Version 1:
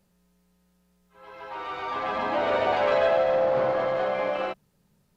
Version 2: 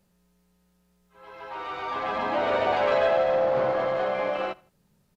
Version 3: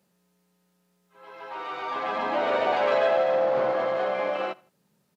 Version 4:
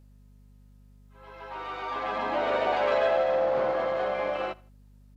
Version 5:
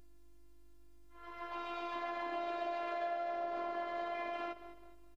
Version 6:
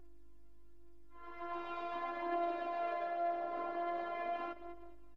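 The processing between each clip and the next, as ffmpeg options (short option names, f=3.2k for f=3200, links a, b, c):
-af "aecho=1:1:81|162:0.0631|0.0227"
-af "highpass=180"
-af "aeval=exprs='val(0)+0.00282*(sin(2*PI*50*n/s)+sin(2*PI*2*50*n/s)/2+sin(2*PI*3*50*n/s)/3+sin(2*PI*4*50*n/s)/4+sin(2*PI*5*50*n/s)/5)':c=same,volume=-2dB"
-filter_complex "[0:a]asplit=4[a][b][c][d];[b]adelay=209,afreqshift=-43,volume=-19.5dB[e];[c]adelay=418,afreqshift=-86,volume=-27.7dB[f];[d]adelay=627,afreqshift=-129,volume=-35.9dB[g];[a][e][f][g]amix=inputs=4:normalize=0,afftfilt=real='hypot(re,im)*cos(PI*b)':imag='0':win_size=512:overlap=0.75,acompressor=threshold=-36dB:ratio=6,volume=1dB"
-af "highshelf=f=2.5k:g=-10.5,flanger=delay=2.7:depth=4.2:regen=44:speed=0.42:shape=triangular,volume=5.5dB"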